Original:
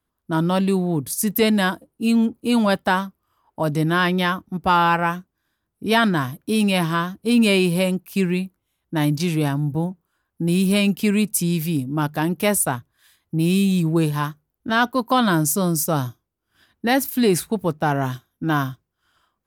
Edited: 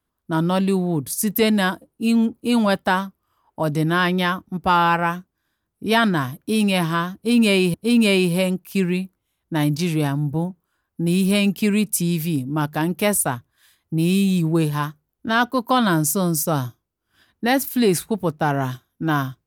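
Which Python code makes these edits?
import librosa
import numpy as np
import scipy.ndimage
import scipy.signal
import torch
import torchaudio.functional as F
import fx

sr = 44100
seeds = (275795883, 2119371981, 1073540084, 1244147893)

y = fx.edit(x, sr, fx.repeat(start_s=7.15, length_s=0.59, count=2), tone=tone)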